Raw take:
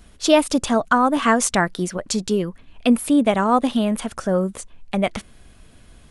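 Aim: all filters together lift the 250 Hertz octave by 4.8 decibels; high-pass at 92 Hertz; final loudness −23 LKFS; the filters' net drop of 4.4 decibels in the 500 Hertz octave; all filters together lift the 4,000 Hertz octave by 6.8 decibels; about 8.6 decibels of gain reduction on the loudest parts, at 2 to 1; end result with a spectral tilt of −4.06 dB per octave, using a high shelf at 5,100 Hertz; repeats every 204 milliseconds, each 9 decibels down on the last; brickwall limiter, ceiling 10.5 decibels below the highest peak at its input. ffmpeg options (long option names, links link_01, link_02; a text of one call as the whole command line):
ffmpeg -i in.wav -af "highpass=92,equalizer=frequency=250:width_type=o:gain=7.5,equalizer=frequency=500:width_type=o:gain=-8,equalizer=frequency=4000:width_type=o:gain=5.5,highshelf=frequency=5100:gain=7.5,acompressor=threshold=-21dB:ratio=2,alimiter=limit=-13dB:level=0:latency=1,aecho=1:1:204|408|612|816:0.355|0.124|0.0435|0.0152" out.wav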